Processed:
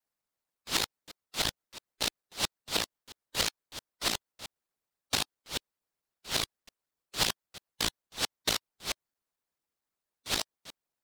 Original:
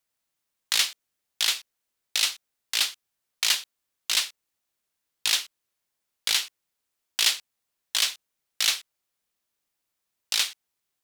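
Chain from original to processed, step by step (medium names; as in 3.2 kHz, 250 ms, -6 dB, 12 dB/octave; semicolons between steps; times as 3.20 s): time reversed locally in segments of 223 ms; high-pass 280 Hz 24 dB/octave; in parallel at -5 dB: sample-and-hold 13×; on the sum: harmonic-percussive split harmonic -13 dB; trim -6 dB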